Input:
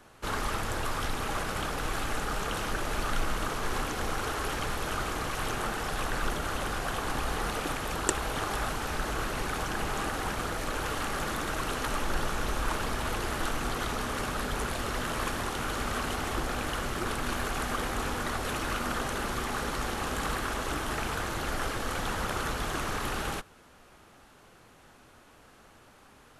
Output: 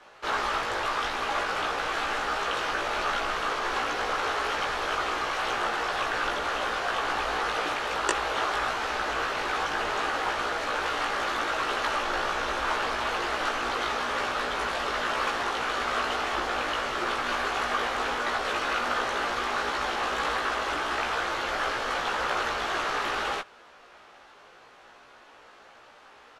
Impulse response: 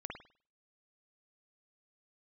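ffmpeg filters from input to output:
-filter_complex "[0:a]acrossover=split=390 5700:gain=0.126 1 0.1[a][b][c];[a][b][c]amix=inputs=3:normalize=0,asplit=2[d][e];[e]adelay=17,volume=-2dB[f];[d][f]amix=inputs=2:normalize=0,volume=4dB"

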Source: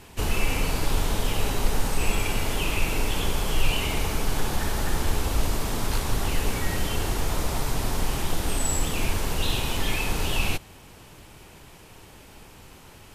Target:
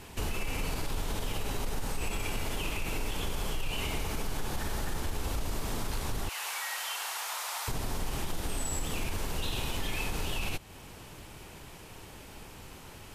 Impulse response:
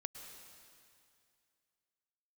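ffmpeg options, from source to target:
-filter_complex "[0:a]asettb=1/sr,asplit=3[a][b][c];[a]atrim=end=6.294[d];[b]atrim=start=6.29:end=7.68,asetpts=PTS-STARTPTS,afade=t=in:d=0.004:c=qsin,afade=t=out:st=1.386:d=0.004:c=qsin,highpass=f=830:w=0.5412,highpass=f=830:w=1.3066[e];[c]atrim=start=7.676[f];[d][e]acrossfade=d=0.004:c1=hsin:c2=qsin[g];[g][f]acrossfade=d=0.004:c1=qsin:c2=hsin,alimiter=limit=-16.5dB:level=0:latency=1:release=35,acompressor=threshold=-34dB:ratio=2"

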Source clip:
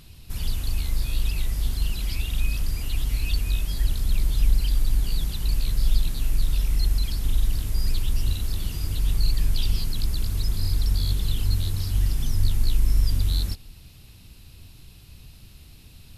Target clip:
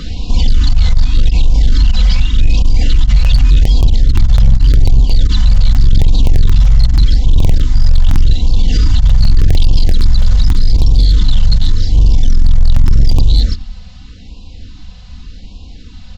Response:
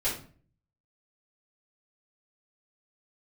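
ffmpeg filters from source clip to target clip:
-filter_complex "[0:a]aemphasis=mode=reproduction:type=50kf,acrossover=split=100|3000[a][b][c];[b]asoftclip=type=tanh:threshold=-34dB[d];[a][d][c]amix=inputs=3:normalize=0,aecho=1:1:4:0.75,asplit=2[e][f];[f]adelay=92,lowpass=f=900:p=1,volume=-13dB,asplit=2[g][h];[h]adelay=92,lowpass=f=900:p=1,volume=0.22,asplit=2[i][j];[j]adelay=92,lowpass=f=900:p=1,volume=0.22[k];[g][i][k]amix=inputs=3:normalize=0[l];[e][l]amix=inputs=2:normalize=0,aresample=16000,aresample=44100,equalizer=f=2.5k:t=o:w=0.21:g=-9,volume=16dB,asoftclip=hard,volume=-16dB,alimiter=level_in=26dB:limit=-1dB:release=50:level=0:latency=1,afftfilt=real='re*(1-between(b*sr/1024,310*pow(1700/310,0.5+0.5*sin(2*PI*0.85*pts/sr))/1.41,310*pow(1700/310,0.5+0.5*sin(2*PI*0.85*pts/sr))*1.41))':imag='im*(1-between(b*sr/1024,310*pow(1700/310,0.5+0.5*sin(2*PI*0.85*pts/sr))/1.41,310*pow(1700/310,0.5+0.5*sin(2*PI*0.85*pts/sr))*1.41))':win_size=1024:overlap=0.75,volume=-1.5dB"

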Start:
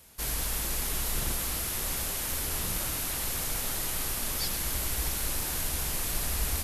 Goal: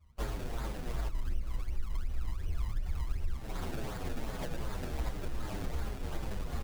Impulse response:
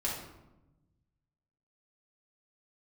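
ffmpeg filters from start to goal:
-filter_complex "[0:a]asplit=2[a][b];[b]adelay=675,lowpass=f=2k:p=1,volume=-3dB,asplit=2[c][d];[d]adelay=675,lowpass=f=2k:p=1,volume=0.37,asplit=2[e][f];[f]adelay=675,lowpass=f=2k:p=1,volume=0.37,asplit=2[g][h];[h]adelay=675,lowpass=f=2k:p=1,volume=0.37,asplit=2[i][j];[j]adelay=675,lowpass=f=2k:p=1,volume=0.37[k];[a][c][e][g][i][k]amix=inputs=6:normalize=0,asplit=3[l][m][n];[l]afade=t=out:st=1.04:d=0.02[o];[m]asubboost=boost=7.5:cutoff=89,afade=t=in:st=1.04:d=0.02,afade=t=out:st=3.35:d=0.02[p];[n]afade=t=in:st=3.35:d=0.02[q];[o][p][q]amix=inputs=3:normalize=0,acompressor=threshold=-39dB:ratio=5,lowpass=f=12k:w=0.5412,lowpass=f=12k:w=1.3066,acontrast=25,afftdn=nr=30:nf=-44,highshelf=f=8.7k:g=-9,acrusher=samples=30:mix=1:aa=0.000001:lfo=1:lforange=30:lforate=2.7,asplit=2[r][s];[s]adelay=7.6,afreqshift=-2.5[t];[r][t]amix=inputs=2:normalize=1,volume=6dB"

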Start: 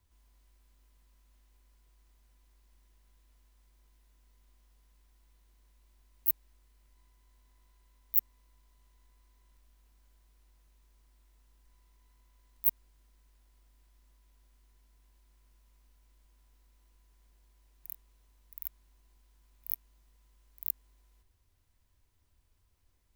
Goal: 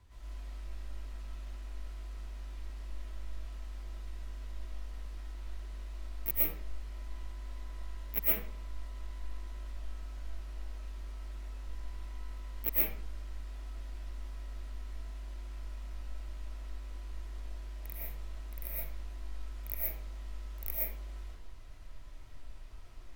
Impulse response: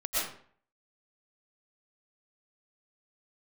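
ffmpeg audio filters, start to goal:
-filter_complex "[0:a]aemphasis=mode=reproduction:type=50fm[a];[1:a]atrim=start_sample=2205[b];[a][b]afir=irnorm=-1:irlink=0,volume=13dB"

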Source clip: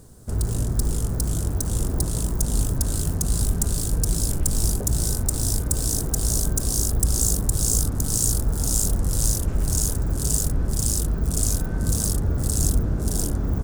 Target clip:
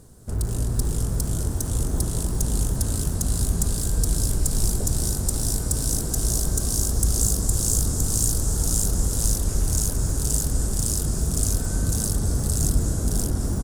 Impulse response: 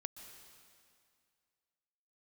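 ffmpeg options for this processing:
-filter_complex "[0:a]asplit=2[a][b];[b]adelay=215.7,volume=-10dB,highshelf=f=4k:g=-4.85[c];[a][c]amix=inputs=2:normalize=0[d];[1:a]atrim=start_sample=2205,afade=t=out:st=0.34:d=0.01,atrim=end_sample=15435,asetrate=26460,aresample=44100[e];[d][e]afir=irnorm=-1:irlink=0"

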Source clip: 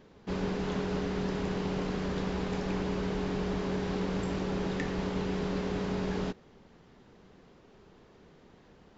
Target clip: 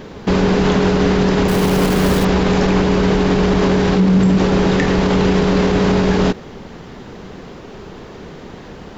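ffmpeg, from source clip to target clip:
-filter_complex "[0:a]asettb=1/sr,asplit=3[a][b][c];[a]atrim=end=1.484[d];[b]atrim=start=1.48:end=2.25,asetpts=PTS-STARTPTS,afade=t=in:d=0.004:c=qsin,afade=t=out:st=0.766:d=0.004:c=qsin,acrusher=bits=8:dc=4:mix=0:aa=0.000001[e];[c]atrim=start=2.246[f];[d][e]acrossfade=d=0.004:c1=hsin:c2=qsin[g];[g][f]acrossfade=d=0.004:c1=qsin:c2=hsin,asettb=1/sr,asplit=3[h][i][j];[h]atrim=end=3.974[k];[i]atrim=start=3.97:end=4.38,asetpts=PTS-STARTPTS,afade=t=in:d=0.004:c=qsin,afade=t=out:st=0.406:d=0.004:c=qsin,equalizer=f=190:w=1.5:g=11[l];[j]atrim=start=4.376[m];[k][l]acrossfade=d=0.004:c1=hsin:c2=qsin[n];[n][m]acrossfade=d=0.004:c1=qsin:c2=hsin,alimiter=level_in=28.5dB:limit=-1dB:release=50:level=0:latency=1,volume=-5.5dB"

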